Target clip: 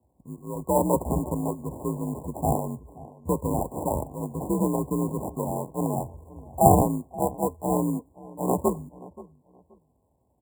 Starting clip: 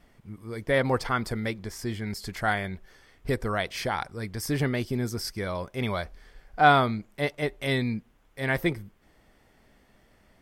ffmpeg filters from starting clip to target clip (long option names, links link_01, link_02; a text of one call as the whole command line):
ffmpeg -i in.wav -filter_complex "[0:a]acrusher=samples=32:mix=1:aa=0.000001,afreqshift=47,agate=range=-12dB:threshold=-53dB:ratio=16:detection=peak,asplit=2[link_01][link_02];[link_02]adelay=527,lowpass=frequency=1600:poles=1,volume=-19dB,asplit=2[link_03][link_04];[link_04]adelay=527,lowpass=frequency=1600:poles=1,volume=0.24[link_05];[link_01][link_03][link_05]amix=inputs=3:normalize=0,afftfilt=real='re*(1-between(b*sr/4096,1100,6900))':imag='im*(1-between(b*sr/4096,1100,6900))':win_size=4096:overlap=0.75,volume=2.5dB" out.wav